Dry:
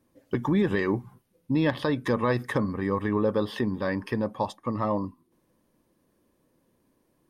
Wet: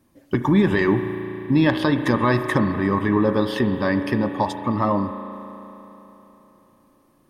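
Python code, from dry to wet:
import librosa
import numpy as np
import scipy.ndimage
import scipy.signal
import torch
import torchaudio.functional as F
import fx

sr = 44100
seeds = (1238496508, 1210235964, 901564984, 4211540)

y = fx.peak_eq(x, sr, hz=480.0, db=-11.0, octaves=0.22)
y = fx.rev_spring(y, sr, rt60_s=3.6, pass_ms=(35,), chirp_ms=60, drr_db=7.5)
y = F.gain(torch.from_numpy(y), 7.0).numpy()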